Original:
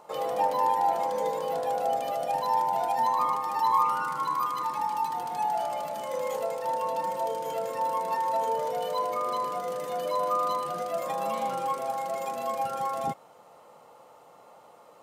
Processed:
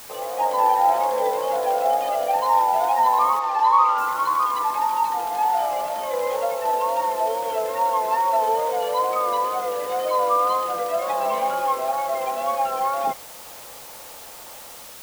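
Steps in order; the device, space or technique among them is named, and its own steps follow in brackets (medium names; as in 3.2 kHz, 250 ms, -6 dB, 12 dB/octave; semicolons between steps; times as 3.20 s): dictaphone (band-pass 370–3600 Hz; level rider gain up to 7.5 dB; wow and flutter; white noise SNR 19 dB); 3.39–3.98 s: three-band isolator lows -18 dB, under 270 Hz, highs -17 dB, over 6.2 kHz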